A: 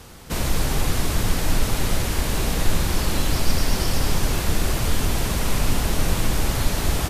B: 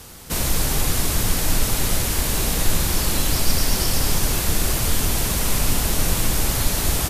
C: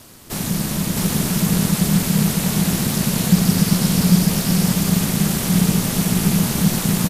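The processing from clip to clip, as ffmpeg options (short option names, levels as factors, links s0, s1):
-af "aemphasis=mode=production:type=cd"
-af "aecho=1:1:649|653:0.668|0.668,aeval=exprs='val(0)*sin(2*PI*180*n/s)':c=same"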